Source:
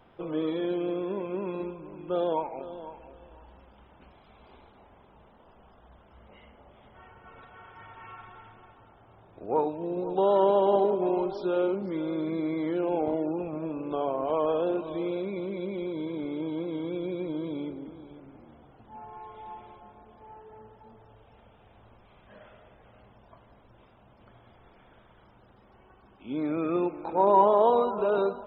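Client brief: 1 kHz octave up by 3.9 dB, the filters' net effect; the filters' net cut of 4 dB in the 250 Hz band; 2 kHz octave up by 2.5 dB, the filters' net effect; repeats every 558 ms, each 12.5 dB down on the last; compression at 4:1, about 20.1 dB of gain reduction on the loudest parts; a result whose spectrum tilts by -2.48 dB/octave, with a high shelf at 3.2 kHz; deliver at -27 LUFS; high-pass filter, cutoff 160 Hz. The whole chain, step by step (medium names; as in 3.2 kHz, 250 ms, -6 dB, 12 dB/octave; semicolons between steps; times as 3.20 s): high-pass 160 Hz; peaking EQ 250 Hz -6.5 dB; peaking EQ 1 kHz +4.5 dB; peaking EQ 2 kHz +3 dB; treble shelf 3.2 kHz -3.5 dB; compression 4:1, threshold -38 dBFS; feedback delay 558 ms, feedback 24%, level -12.5 dB; trim +14.5 dB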